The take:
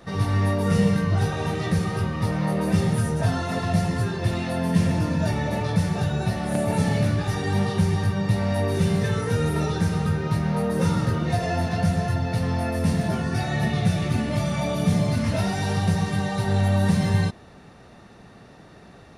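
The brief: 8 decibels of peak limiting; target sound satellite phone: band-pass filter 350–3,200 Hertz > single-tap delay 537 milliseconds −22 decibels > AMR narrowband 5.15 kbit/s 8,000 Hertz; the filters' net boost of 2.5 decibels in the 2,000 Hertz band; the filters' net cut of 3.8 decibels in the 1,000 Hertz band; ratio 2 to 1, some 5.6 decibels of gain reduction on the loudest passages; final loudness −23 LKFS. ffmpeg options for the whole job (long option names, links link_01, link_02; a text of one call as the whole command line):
ffmpeg -i in.wav -af "equalizer=frequency=1000:width_type=o:gain=-6.5,equalizer=frequency=2000:width_type=o:gain=5.5,acompressor=threshold=-26dB:ratio=2,alimiter=limit=-21dB:level=0:latency=1,highpass=350,lowpass=3200,aecho=1:1:537:0.0794,volume=16.5dB" -ar 8000 -c:a libopencore_amrnb -b:a 5150 out.amr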